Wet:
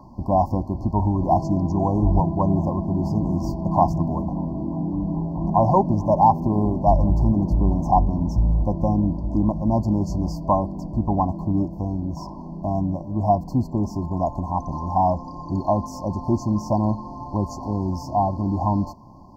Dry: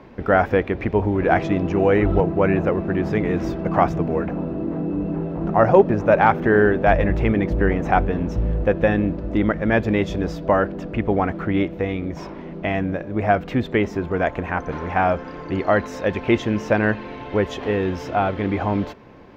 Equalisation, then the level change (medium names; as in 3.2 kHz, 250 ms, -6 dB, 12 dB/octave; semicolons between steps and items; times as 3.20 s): brick-wall FIR band-stop 1.1–4.2 kHz; static phaser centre 1.1 kHz, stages 4; +3.5 dB